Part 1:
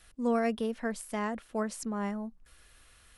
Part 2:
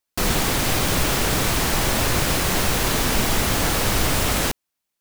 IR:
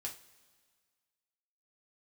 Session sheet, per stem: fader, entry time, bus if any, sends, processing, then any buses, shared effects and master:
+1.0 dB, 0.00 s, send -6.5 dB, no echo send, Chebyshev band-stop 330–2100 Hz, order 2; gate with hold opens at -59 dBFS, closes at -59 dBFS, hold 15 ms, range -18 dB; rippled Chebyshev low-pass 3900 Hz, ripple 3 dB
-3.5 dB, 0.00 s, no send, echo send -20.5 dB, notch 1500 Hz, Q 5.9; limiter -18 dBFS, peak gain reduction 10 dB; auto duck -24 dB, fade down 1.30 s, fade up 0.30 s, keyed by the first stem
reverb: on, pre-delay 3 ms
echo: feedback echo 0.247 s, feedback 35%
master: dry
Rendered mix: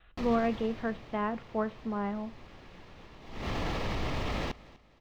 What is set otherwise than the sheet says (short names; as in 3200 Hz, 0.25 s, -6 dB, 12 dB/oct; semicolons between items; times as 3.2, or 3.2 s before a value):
stem 1: missing Chebyshev band-stop 330–2100 Hz, order 2; master: extra air absorption 230 m